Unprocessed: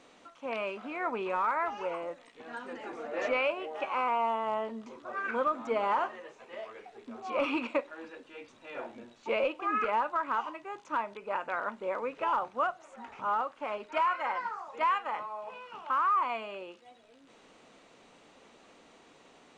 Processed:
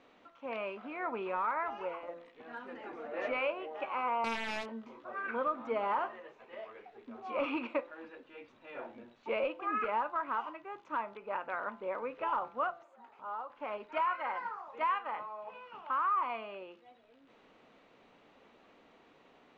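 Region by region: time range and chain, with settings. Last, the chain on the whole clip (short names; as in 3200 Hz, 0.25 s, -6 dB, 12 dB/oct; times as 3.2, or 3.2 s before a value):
4.24–5.05 low shelf 220 Hz -4 dB + wrapped overs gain 25 dB + doubler 22 ms -5 dB
12.83–13.5 HPF 810 Hz 6 dB/oct + bell 2200 Hz -10.5 dB 1.7 oct + notch 5700 Hz, Q 8
whole clip: LPF 3200 Hz 12 dB/oct; de-hum 170.4 Hz, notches 9; gain -3.5 dB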